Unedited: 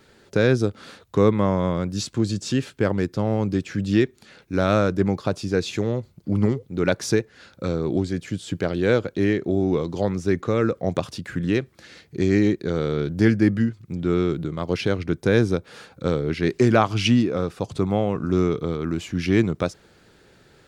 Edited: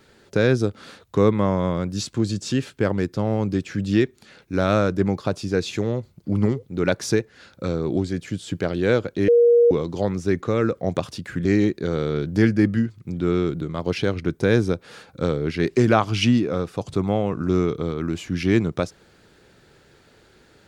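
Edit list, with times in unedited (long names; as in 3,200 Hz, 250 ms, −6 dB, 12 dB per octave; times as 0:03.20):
0:09.28–0:09.71: beep over 474 Hz −11 dBFS
0:11.45–0:12.28: remove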